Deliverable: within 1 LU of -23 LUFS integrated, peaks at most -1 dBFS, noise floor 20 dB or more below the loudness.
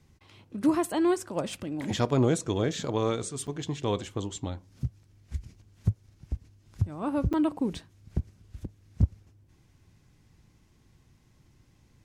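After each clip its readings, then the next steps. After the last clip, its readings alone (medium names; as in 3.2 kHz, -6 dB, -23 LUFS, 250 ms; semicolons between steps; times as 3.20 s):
dropouts 2; longest dropout 6.8 ms; loudness -30.5 LUFS; peak level -13.5 dBFS; loudness target -23.0 LUFS
-> interpolate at 3.47/7.33 s, 6.8 ms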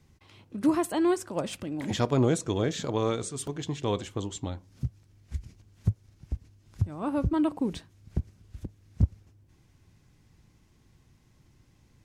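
dropouts 0; loudness -30.5 LUFS; peak level -13.5 dBFS; loudness target -23.0 LUFS
-> trim +7.5 dB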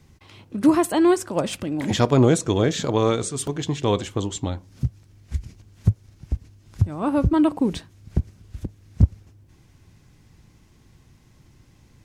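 loudness -23.0 LUFS; peak level -6.0 dBFS; noise floor -55 dBFS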